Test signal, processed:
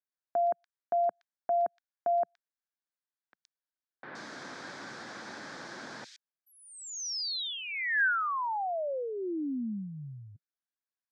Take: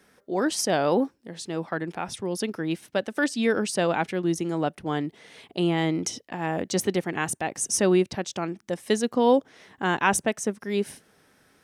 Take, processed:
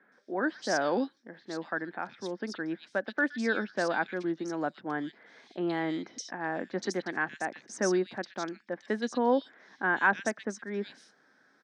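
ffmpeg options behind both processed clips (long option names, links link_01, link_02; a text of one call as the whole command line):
ffmpeg -i in.wav -filter_complex "[0:a]highpass=frequency=170:width=0.5412,highpass=frequency=170:width=1.3066,equalizer=frequency=170:width_type=q:width=4:gain=-6,equalizer=frequency=430:width_type=q:width=4:gain=-4,equalizer=frequency=1600:width_type=q:width=4:gain=9,equalizer=frequency=2800:width_type=q:width=4:gain=-9,lowpass=frequency=5700:width=0.5412,lowpass=frequency=5700:width=1.3066,acrossover=split=2700[link_01][link_02];[link_02]adelay=120[link_03];[link_01][link_03]amix=inputs=2:normalize=0,volume=-5dB" out.wav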